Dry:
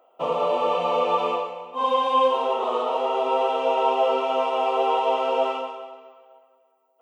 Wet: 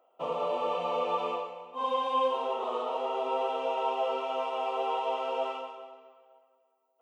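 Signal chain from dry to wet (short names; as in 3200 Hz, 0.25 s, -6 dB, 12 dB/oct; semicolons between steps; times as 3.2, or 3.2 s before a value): 3.66–5.78 low shelf 280 Hz -7 dB; gain -8 dB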